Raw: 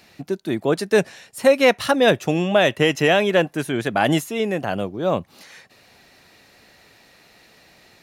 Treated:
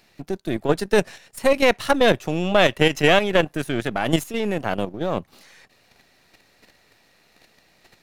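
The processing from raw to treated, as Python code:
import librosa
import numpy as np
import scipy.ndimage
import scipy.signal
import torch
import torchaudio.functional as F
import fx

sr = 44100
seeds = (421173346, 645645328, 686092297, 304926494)

y = np.where(x < 0.0, 10.0 ** (-7.0 / 20.0) * x, x)
y = fx.level_steps(y, sr, step_db=9)
y = F.gain(torch.from_numpy(y), 4.0).numpy()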